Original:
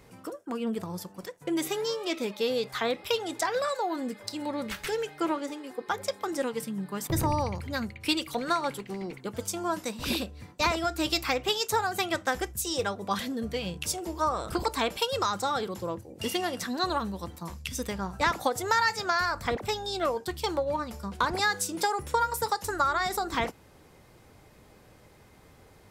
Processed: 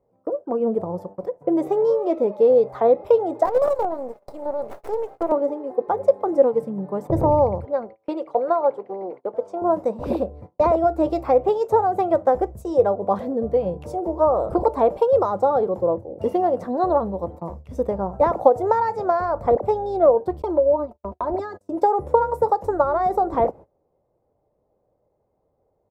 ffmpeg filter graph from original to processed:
-filter_complex "[0:a]asettb=1/sr,asplit=3[s0][s1][s2];[s0]atrim=end=3.454[s3];[s1]atrim=start=3.45:end=5.32,asetpts=PTS-STARTPTS,afade=t=in:d=0.004:c=qsin,afade=t=out:st=1.866:d=0.004:c=qsin,highpass=400,aemphasis=mode=production:type=cd,acrusher=bits=5:dc=4:mix=0:aa=0.000001[s4];[s2]atrim=start=5.316[s5];[s3][s4]acrossfade=d=0.004:c1=hsin:c2=qsin[s6];[s6][s5]acrossfade=d=0.004:c1=qsin:c2=hsin,asettb=1/sr,asplit=3[s7][s8][s9];[s7]atrim=end=7.654[s10];[s8]atrim=start=7.65:end=9.62,asetpts=PTS-STARTPTS,afade=t=in:d=0.004:c=qsin,afade=t=out:st=1.966:d=0.004:c=qsin,highpass=420,lowpass=6800,highshelf=f=4000:g=-6.5[s11];[s9]atrim=start=9.616[s12];[s10][s11]acrossfade=d=0.004:c1=hsin:c2=qsin[s13];[s13][s12]acrossfade=d=0.004:c1=qsin:c2=hsin,asettb=1/sr,asplit=3[s14][s15][s16];[s14]atrim=end=20.424[s17];[s15]atrim=start=20.42:end=21.83,asetpts=PTS-STARTPTS,afade=t=in:d=0.004:c=qsin,afade=t=out:st=1.406:d=0.004:c=qsin,agate=range=0.0224:threshold=0.0141:ratio=16:release=100:detection=peak,aecho=1:1:3.1:0.93,atrim=end_sample=62181,acompressor=threshold=0.02:ratio=2:attack=3.2:release=140:knee=1:detection=peak[s18];[s16]atrim=start=21.826[s19];[s17][s18]acrossfade=d=0.004:c1=hsin:c2=qsin[s20];[s20][s19]acrossfade=d=0.004:c1=qsin:c2=hsin,firequalizer=gain_entry='entry(240,0);entry(560,12);entry(1600,-17);entry(2900,-26)':delay=0.05:min_phase=1,agate=range=0.0708:threshold=0.00794:ratio=16:detection=peak,equalizer=f=2100:w=1.7:g=3,volume=1.78"

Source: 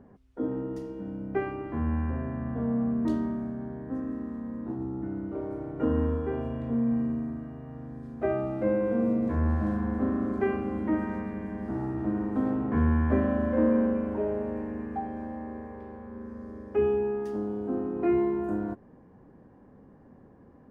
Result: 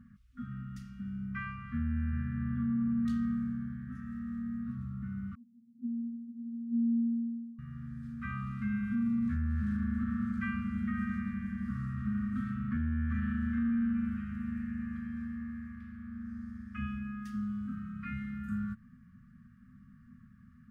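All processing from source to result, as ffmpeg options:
-filter_complex "[0:a]asettb=1/sr,asplit=3[s0][s1][s2];[s0]atrim=end=5.354[s3];[s1]atrim=start=5.35:end=7.59,asetpts=PTS-STARTPTS,afade=t=in:d=0.004:c=qsin,afade=t=out:st=2.236:d=0.004:c=qsin,asuperpass=centerf=230:order=4:qfactor=7.2,aecho=1:1:2.8:0.92,atrim=end_sample=98784[s4];[s2]atrim=start=7.586[s5];[s3][s4]acrossfade=d=0.004:c1=hsin:c2=qsin[s6];[s6][s5]acrossfade=d=0.004:c1=qsin:c2=hsin,afftfilt=real='re*(1-between(b*sr/4096,250,1100))':imag='im*(1-between(b*sr/4096,250,1100))':win_size=4096:overlap=0.75,alimiter=level_in=1.12:limit=0.0631:level=0:latency=1:release=62,volume=0.891"

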